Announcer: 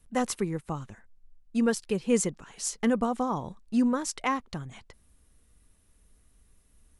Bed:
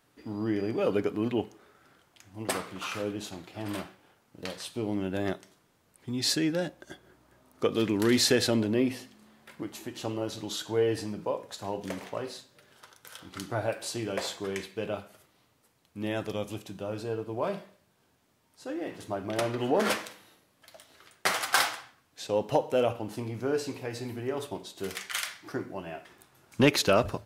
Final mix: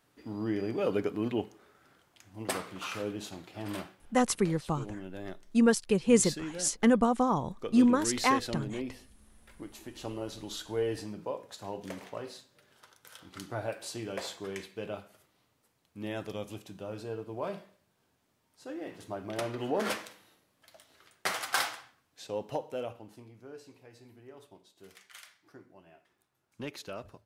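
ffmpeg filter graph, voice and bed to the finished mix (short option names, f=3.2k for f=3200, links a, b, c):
-filter_complex "[0:a]adelay=4000,volume=2dB[a];[1:a]volume=3.5dB,afade=t=out:st=3.85:d=0.46:silence=0.375837,afade=t=in:st=9.08:d=1.01:silence=0.501187,afade=t=out:st=21.85:d=1.5:silence=0.211349[b];[a][b]amix=inputs=2:normalize=0"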